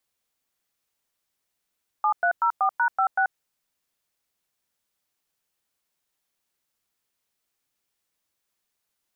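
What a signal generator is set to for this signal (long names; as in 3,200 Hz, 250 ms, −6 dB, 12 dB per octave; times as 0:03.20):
touch tones "7304#56", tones 85 ms, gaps 104 ms, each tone −21 dBFS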